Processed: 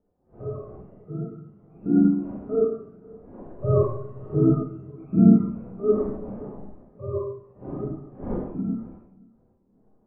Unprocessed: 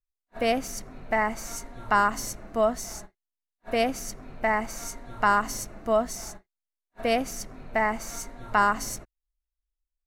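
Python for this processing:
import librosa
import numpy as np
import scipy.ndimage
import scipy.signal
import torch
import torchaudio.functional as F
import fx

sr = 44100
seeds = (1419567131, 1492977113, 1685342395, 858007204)

y = fx.octave_mirror(x, sr, pivot_hz=530.0)
y = fx.dmg_wind(y, sr, seeds[0], corner_hz=520.0, level_db=-34.0)
y = fx.doppler_pass(y, sr, speed_mps=11, closest_m=15.0, pass_at_s=4.2)
y = fx.air_absorb(y, sr, metres=460.0)
y = fx.echo_feedback(y, sr, ms=525, feedback_pct=27, wet_db=-17)
y = fx.rev_schroeder(y, sr, rt60_s=0.94, comb_ms=31, drr_db=-5.0)
y = fx.spectral_expand(y, sr, expansion=1.5)
y = y * librosa.db_to_amplitude(4.0)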